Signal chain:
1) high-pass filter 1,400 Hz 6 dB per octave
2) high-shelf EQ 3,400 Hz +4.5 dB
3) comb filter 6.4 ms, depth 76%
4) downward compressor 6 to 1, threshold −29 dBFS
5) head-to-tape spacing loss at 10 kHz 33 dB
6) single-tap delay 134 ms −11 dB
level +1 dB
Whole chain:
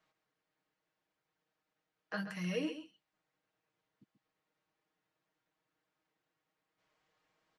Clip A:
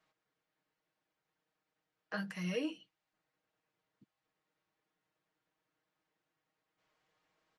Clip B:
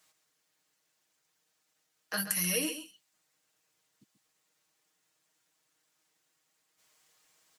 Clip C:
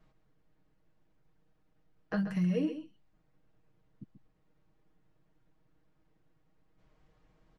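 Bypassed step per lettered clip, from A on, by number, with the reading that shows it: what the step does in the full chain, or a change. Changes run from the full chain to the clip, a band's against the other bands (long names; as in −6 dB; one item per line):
6, change in momentary loudness spread −5 LU
5, 8 kHz band +23.5 dB
1, 4 kHz band −9.5 dB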